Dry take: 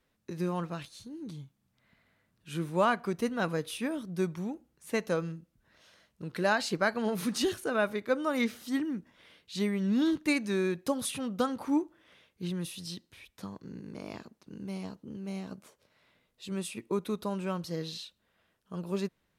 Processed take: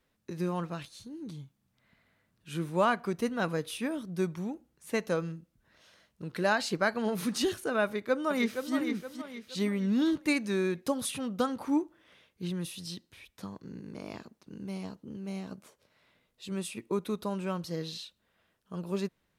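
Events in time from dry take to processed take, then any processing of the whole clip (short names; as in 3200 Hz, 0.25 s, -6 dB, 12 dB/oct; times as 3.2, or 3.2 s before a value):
7.83–8.74 echo throw 0.47 s, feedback 40%, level -7 dB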